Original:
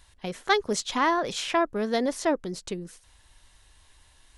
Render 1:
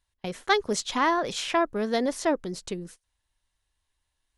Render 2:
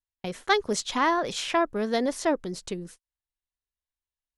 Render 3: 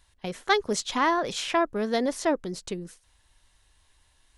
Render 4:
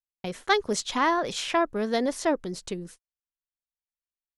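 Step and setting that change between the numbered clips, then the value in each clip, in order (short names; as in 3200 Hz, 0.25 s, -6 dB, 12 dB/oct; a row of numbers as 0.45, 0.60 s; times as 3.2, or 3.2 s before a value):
gate, range: -21, -40, -6, -53 dB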